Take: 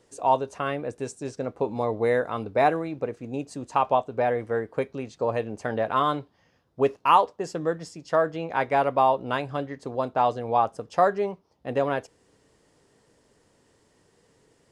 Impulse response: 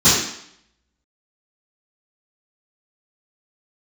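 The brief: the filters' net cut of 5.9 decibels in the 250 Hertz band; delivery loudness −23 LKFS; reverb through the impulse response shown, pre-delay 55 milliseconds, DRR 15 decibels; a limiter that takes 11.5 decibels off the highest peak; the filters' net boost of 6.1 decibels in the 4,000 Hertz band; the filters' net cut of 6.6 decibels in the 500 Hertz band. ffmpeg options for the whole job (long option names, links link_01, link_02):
-filter_complex "[0:a]equalizer=frequency=250:width_type=o:gain=-5,equalizer=frequency=500:width_type=o:gain=-7.5,equalizer=frequency=4000:width_type=o:gain=8.5,alimiter=limit=-17.5dB:level=0:latency=1,asplit=2[link_01][link_02];[1:a]atrim=start_sample=2205,adelay=55[link_03];[link_02][link_03]afir=irnorm=-1:irlink=0,volume=-38dB[link_04];[link_01][link_04]amix=inputs=2:normalize=0,volume=9dB"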